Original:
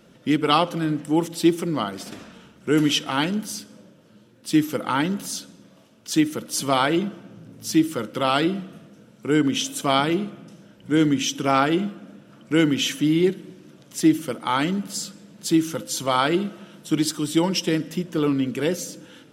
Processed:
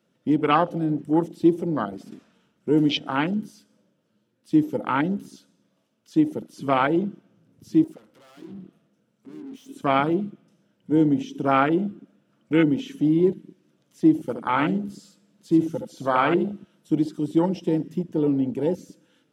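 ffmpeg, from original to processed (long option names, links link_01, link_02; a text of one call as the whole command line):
ffmpeg -i in.wav -filter_complex "[0:a]asettb=1/sr,asplit=3[link_01][link_02][link_03];[link_01]atrim=end=7.844[link_04];[link_02]atrim=start=7.84:end=9.69,asetpts=PTS-STARTPTS,afade=type=in:duration=0.004:curve=qsin,afade=type=out:start_time=1.846:duration=0.004:curve=qsin,aeval=exprs='(tanh(56.2*val(0)+0.5)-tanh(0.5))/56.2':channel_layout=same[link_05];[link_03]atrim=start=9.686[link_06];[link_04][link_05]acrossfade=duration=0.004:curve1=hsin:curve2=qsin[link_07];[link_07][link_06]acrossfade=duration=0.004:curve1=qsin:curve2=hsin,asettb=1/sr,asplit=3[link_08][link_09][link_10];[link_08]atrim=end=14.184[link_11];[link_09]atrim=start=14.18:end=16.6,asetpts=PTS-STARTPTS,afade=type=in:duration=0.004:curve=qsin,afade=type=out:start_time=2.416:duration=0.004:curve=qsin,aecho=1:1:73:0.447,atrim=end_sample=106722[link_12];[link_10]atrim=start=16.596[link_13];[link_11][link_12]acrossfade=duration=0.004:curve1=hsin:curve2=qsin[link_14];[link_14][link_13]acrossfade=duration=0.004:curve1=qsin:curve2=hsin,highpass=100,afwtdn=0.0562,acrossover=split=4500[link_15][link_16];[link_16]acompressor=threshold=-52dB:ratio=4:attack=1:release=60[link_17];[link_15][link_17]amix=inputs=2:normalize=0" out.wav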